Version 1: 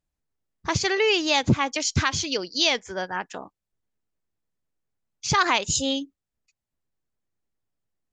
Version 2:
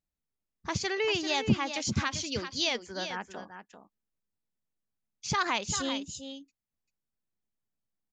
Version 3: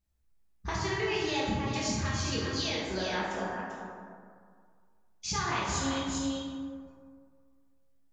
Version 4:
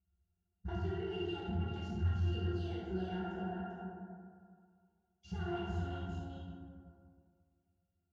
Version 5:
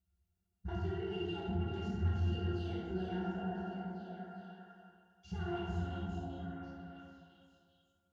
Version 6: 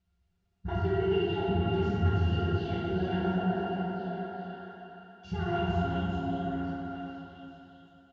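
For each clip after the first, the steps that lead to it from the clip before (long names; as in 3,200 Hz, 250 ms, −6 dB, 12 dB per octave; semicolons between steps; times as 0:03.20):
parametric band 210 Hz +7 dB 0.35 octaves; on a send: single-tap delay 393 ms −9.5 dB; on the sum: level −8 dB
low-shelf EQ 93 Hz +11 dB; downward compressor, threshold −35 dBFS, peak gain reduction 17.5 dB; dense smooth reverb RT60 2 s, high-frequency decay 0.4×, DRR −7 dB
soft clipping −32 dBFS, distortion −10 dB; resonances in every octave F, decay 0.14 s; level +8.5 dB
echo through a band-pass that steps 348 ms, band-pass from 220 Hz, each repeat 1.4 octaves, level −1.5 dB
low-pass filter 4,400 Hz 12 dB per octave; comb filter 7.3 ms, depth 37%; dense smooth reverb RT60 3.2 s, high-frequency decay 1×, DRR 2.5 dB; level +8 dB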